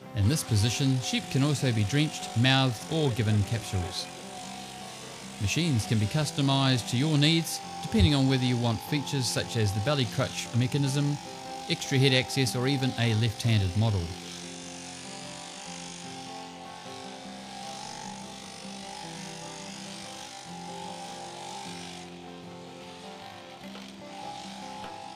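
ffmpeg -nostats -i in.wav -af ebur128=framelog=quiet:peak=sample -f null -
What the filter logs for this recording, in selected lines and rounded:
Integrated loudness:
  I:         -28.2 LUFS
  Threshold: -39.4 LUFS
Loudness range:
  LRA:        14.5 LU
  Threshold: -49.5 LUFS
  LRA low:   -40.3 LUFS
  LRA high:  -25.8 LUFS
Sample peak:
  Peak:       -8.3 dBFS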